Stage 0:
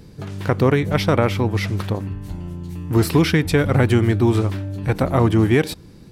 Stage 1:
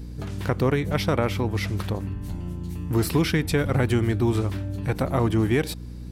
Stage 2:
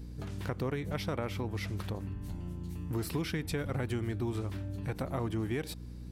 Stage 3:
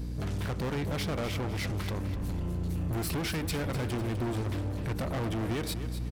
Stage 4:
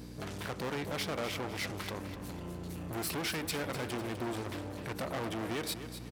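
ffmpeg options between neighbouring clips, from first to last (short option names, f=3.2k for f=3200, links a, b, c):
-filter_complex "[0:a]highshelf=f=6.8k:g=4.5,asplit=2[a][b];[b]acompressor=threshold=-25dB:ratio=6,volume=-2dB[c];[a][c]amix=inputs=2:normalize=0,aeval=exprs='val(0)+0.0398*(sin(2*PI*60*n/s)+sin(2*PI*2*60*n/s)/2+sin(2*PI*3*60*n/s)/3+sin(2*PI*4*60*n/s)/4+sin(2*PI*5*60*n/s)/5)':c=same,volume=-7.5dB"
-af "acompressor=threshold=-26dB:ratio=2,volume=-7.5dB"
-filter_complex "[0:a]asoftclip=type=hard:threshold=-38.5dB,asplit=2[a][b];[b]aecho=0:1:251|502|753|1004:0.282|0.116|0.0474|0.0194[c];[a][c]amix=inputs=2:normalize=0,volume=8.5dB"
-af "highpass=f=380:p=1"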